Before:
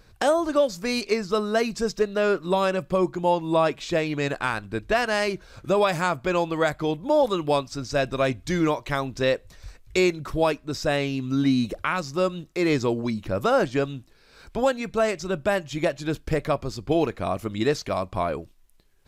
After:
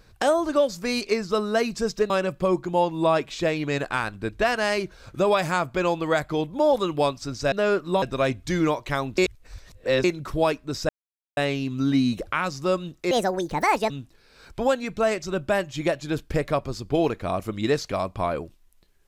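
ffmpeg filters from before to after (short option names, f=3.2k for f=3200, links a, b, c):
-filter_complex "[0:a]asplit=9[a][b][c][d][e][f][g][h][i];[a]atrim=end=2.102[j];[b]atrim=start=2.598:end=8.022[k];[c]atrim=start=2.098:end=2.602[l];[d]atrim=start=8.018:end=9.182[m];[e]atrim=start=9.178:end=10.042,asetpts=PTS-STARTPTS,areverse[n];[f]atrim=start=10.038:end=10.89,asetpts=PTS-STARTPTS,afade=t=out:st=0.848:d=0.004:c=hsin,apad=pad_dur=0.48[o];[g]atrim=start=10.89:end=12.634,asetpts=PTS-STARTPTS,afade=t=in:d=0.004:c=hsin[p];[h]atrim=start=12.63:end=13.87,asetpts=PTS-STARTPTS,asetrate=69237,aresample=44100[q];[i]atrim=start=13.866[r];[j][k]acrossfade=d=0.004:c1=hsin:c2=hsin[s];[s][l]acrossfade=d=0.004:c1=hsin:c2=hsin[t];[t][m]acrossfade=d=0.004:c1=hsin:c2=hsin[u];[u][n]acrossfade=d=0.004:c1=hsin:c2=hsin[v];[o][p]concat=n=2:v=0:a=1[w];[v][w]acrossfade=d=0.004:c1=hsin:c2=hsin[x];[x][q]acrossfade=d=0.004:c1=hsin:c2=hsin[y];[y][r]acrossfade=d=0.004:c1=hsin:c2=hsin"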